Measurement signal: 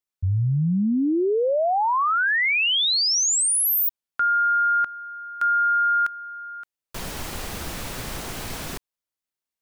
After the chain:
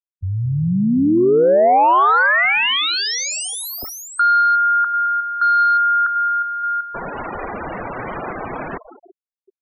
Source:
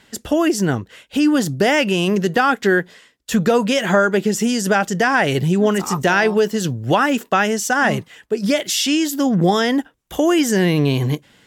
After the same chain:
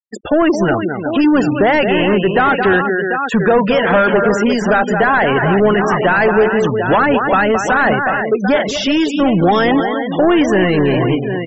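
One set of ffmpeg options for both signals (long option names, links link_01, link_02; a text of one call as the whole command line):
ffmpeg -i in.wav -filter_complex "[0:a]aecho=1:1:218|360|743:0.316|0.237|0.251,asplit=2[link_01][link_02];[link_02]highpass=frequency=720:poles=1,volume=21dB,asoftclip=type=tanh:threshold=-2.5dB[link_03];[link_01][link_03]amix=inputs=2:normalize=0,lowpass=frequency=1200:poles=1,volume=-6dB,afftfilt=real='re*gte(hypot(re,im),0.0891)':imag='im*gte(hypot(re,im),0.0891)':win_size=1024:overlap=0.75" out.wav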